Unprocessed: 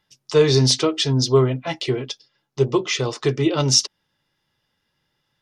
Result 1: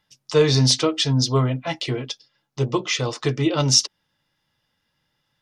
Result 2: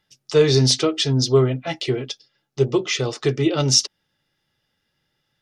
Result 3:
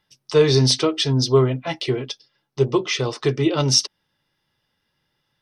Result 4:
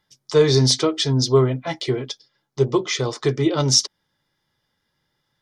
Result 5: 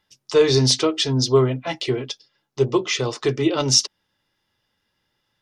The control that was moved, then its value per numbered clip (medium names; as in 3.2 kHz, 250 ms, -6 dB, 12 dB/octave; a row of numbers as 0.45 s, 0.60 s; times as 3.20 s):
band-stop, frequency: 390 Hz, 1 kHz, 7 kHz, 2.7 kHz, 150 Hz